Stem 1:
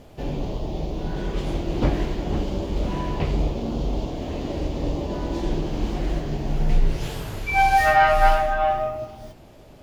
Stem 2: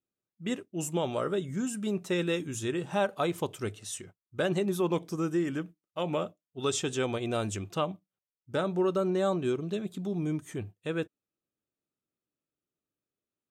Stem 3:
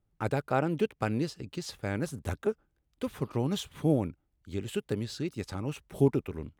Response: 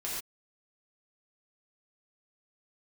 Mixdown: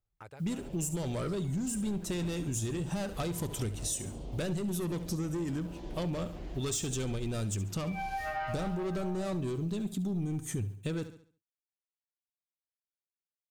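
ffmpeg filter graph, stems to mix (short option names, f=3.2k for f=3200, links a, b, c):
-filter_complex "[0:a]adelay=400,volume=-17dB[a];[1:a]asoftclip=type=tanh:threshold=-29.5dB,bass=f=250:g=12,treble=f=4k:g=10,acrusher=bits=10:mix=0:aa=0.000001,volume=2.5dB,asplit=2[b][c];[c]volume=-14dB[d];[2:a]equalizer=f=230:t=o:w=1.4:g=-12.5,acompressor=threshold=-38dB:ratio=6,volume=-8.5dB[e];[d]aecho=0:1:70|140|210|280|350:1|0.33|0.109|0.0359|0.0119[f];[a][b][e][f]amix=inputs=4:normalize=0,acompressor=threshold=-31dB:ratio=6"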